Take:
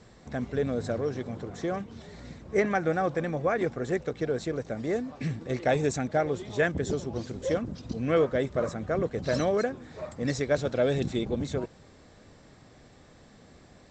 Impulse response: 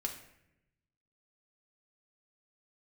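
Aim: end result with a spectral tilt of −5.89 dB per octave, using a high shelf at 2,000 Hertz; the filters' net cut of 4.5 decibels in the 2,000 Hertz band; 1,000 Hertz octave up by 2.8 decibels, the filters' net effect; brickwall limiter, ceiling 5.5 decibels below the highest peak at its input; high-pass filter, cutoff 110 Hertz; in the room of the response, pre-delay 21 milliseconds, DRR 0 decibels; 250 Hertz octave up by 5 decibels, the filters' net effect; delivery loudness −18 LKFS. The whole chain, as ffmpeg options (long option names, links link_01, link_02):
-filter_complex "[0:a]highpass=110,equalizer=frequency=250:width_type=o:gain=6.5,equalizer=frequency=1000:width_type=o:gain=6,highshelf=frequency=2000:gain=-3.5,equalizer=frequency=2000:width_type=o:gain=-6.5,alimiter=limit=-16.5dB:level=0:latency=1,asplit=2[link_01][link_02];[1:a]atrim=start_sample=2205,adelay=21[link_03];[link_02][link_03]afir=irnorm=-1:irlink=0,volume=-1dB[link_04];[link_01][link_04]amix=inputs=2:normalize=0,volume=7dB"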